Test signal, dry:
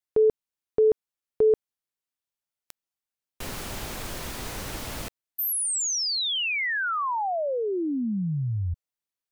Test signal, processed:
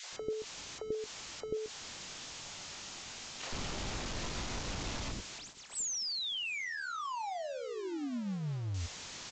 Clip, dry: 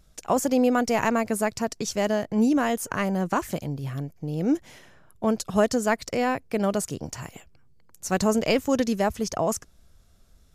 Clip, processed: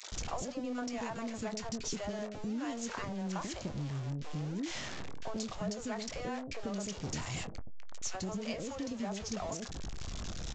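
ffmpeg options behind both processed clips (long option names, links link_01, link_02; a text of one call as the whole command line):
ffmpeg -i in.wav -filter_complex "[0:a]aeval=exprs='val(0)+0.5*0.0596*sgn(val(0))':channel_layout=same,asplit=2[link_01][link_02];[link_02]adelay=21,volume=-12.5dB[link_03];[link_01][link_03]amix=inputs=2:normalize=0,aresample=16000,acrusher=bits=7:mix=0:aa=0.000001,aresample=44100,acompressor=threshold=-28dB:ratio=6:attack=75:release=203:knee=1:detection=rms,acrossover=split=490|1600[link_04][link_05][link_06];[link_05]adelay=30[link_07];[link_04]adelay=120[link_08];[link_08][link_07][link_06]amix=inputs=3:normalize=0,volume=-8.5dB" out.wav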